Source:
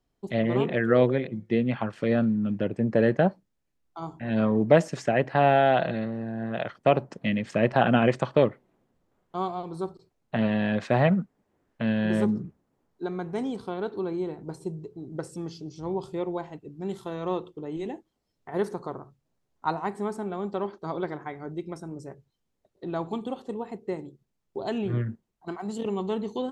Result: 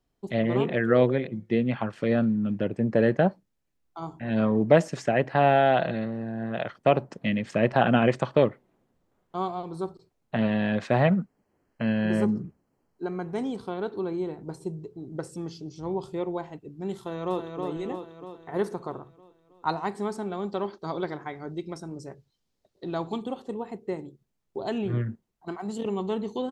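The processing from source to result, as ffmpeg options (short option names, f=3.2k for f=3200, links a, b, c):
-filter_complex "[0:a]asettb=1/sr,asplit=3[a][b][c];[a]atrim=end=11.194[d];[b]atrim=start=11.19:end=13.28,asetpts=PTS-STARTPTS,afade=t=in:d=0.004:c=qsin,afade=t=out:st=2.086:d=0.004:c=qsin,asuperstop=centerf=3600:order=12:qfactor=5.6[e];[c]atrim=start=13.276[f];[d][e]acrossfade=d=0.004:c1=hsin:c2=qsin[g];[g][f]acrossfade=d=0.004:c1=qsin:c2=hsin,asplit=2[h][i];[i]afade=t=in:st=16.98:d=0.01,afade=t=out:st=17.6:d=0.01,aecho=0:1:320|640|960|1280|1600|1920|2240|2560|2880:0.595662|0.357397|0.214438|0.128663|0.0771978|0.0463187|0.0277912|0.0166747|0.0100048[j];[h][j]amix=inputs=2:normalize=0,asettb=1/sr,asplit=3[k][l][m];[k]atrim=end=19.694[n];[l]atrim=start=19.69:end=23.23,asetpts=PTS-STARTPTS,afade=t=in:d=0.004:c=qsin,afade=t=out:st=3.536:d=0.004:c=qsin,equalizer=f=4.6k:w=1.2:g=7.5[o];[m]atrim=start=23.226[p];[n][o]acrossfade=d=0.004:c1=hsin:c2=qsin[q];[q][p]acrossfade=d=0.004:c1=qsin:c2=hsin"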